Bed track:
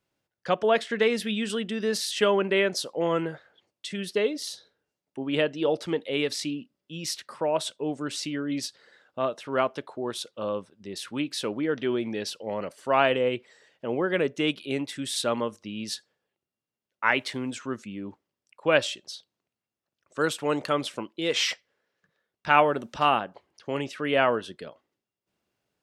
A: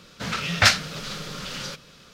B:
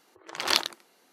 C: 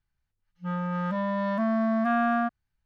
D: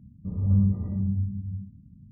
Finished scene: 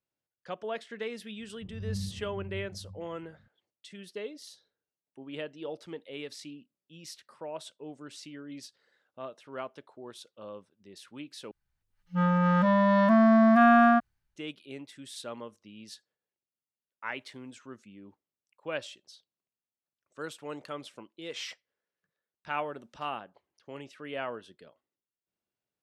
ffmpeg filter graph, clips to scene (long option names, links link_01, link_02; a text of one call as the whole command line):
ffmpeg -i bed.wav -i cue0.wav -i cue1.wav -i cue2.wav -i cue3.wav -filter_complex "[0:a]volume=-13.5dB[link_01];[3:a]dynaudnorm=framelen=180:gausssize=5:maxgain=8dB[link_02];[link_01]asplit=2[link_03][link_04];[link_03]atrim=end=11.514[link_05];[link_02]atrim=end=2.85,asetpts=PTS-STARTPTS,volume=-2.5dB[link_06];[link_04]atrim=start=14.356[link_07];[4:a]atrim=end=2.11,asetpts=PTS-STARTPTS,volume=-14dB,afade=type=in:duration=0.004:curve=hsin,afade=type=out:start_time=2.106:duration=0.004:curve=hsin,adelay=1370[link_08];[link_05][link_06]acrossfade=duration=0.004:curve1=hsin:curve2=hsin[link_09];[link_09][link_07]acrossfade=duration=0.004:curve1=hsin:curve2=hsin[link_10];[link_10][link_08]amix=inputs=2:normalize=0" out.wav